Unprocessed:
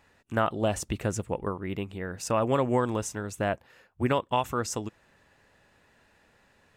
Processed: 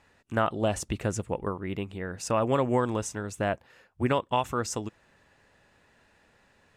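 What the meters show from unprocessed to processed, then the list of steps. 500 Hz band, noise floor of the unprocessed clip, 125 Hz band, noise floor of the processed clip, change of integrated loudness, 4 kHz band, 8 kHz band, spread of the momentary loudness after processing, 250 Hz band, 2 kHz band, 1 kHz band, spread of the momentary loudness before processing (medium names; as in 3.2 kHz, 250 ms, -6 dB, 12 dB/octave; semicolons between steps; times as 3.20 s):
0.0 dB, -64 dBFS, 0.0 dB, -64 dBFS, 0.0 dB, 0.0 dB, -0.5 dB, 10 LU, 0.0 dB, 0.0 dB, 0.0 dB, 10 LU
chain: low-pass 12 kHz 12 dB/octave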